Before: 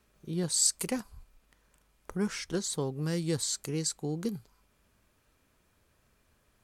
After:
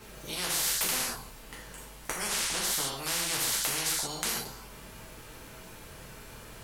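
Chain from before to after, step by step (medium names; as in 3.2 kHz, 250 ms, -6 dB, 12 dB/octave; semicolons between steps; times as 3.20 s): gated-style reverb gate 170 ms falling, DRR -5.5 dB; spectrum-flattening compressor 10:1; trim -1.5 dB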